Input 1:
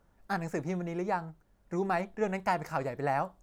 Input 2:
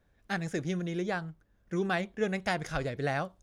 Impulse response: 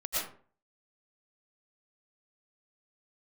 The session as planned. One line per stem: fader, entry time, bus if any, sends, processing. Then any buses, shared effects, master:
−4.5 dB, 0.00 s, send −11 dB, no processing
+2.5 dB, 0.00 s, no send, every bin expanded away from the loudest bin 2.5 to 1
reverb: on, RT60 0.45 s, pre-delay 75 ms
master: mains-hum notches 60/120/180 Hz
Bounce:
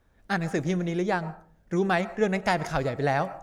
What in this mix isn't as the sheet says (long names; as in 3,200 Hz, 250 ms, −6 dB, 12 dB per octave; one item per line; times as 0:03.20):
stem 2: missing every bin expanded away from the loudest bin 2.5 to 1
master: missing mains-hum notches 60/120/180 Hz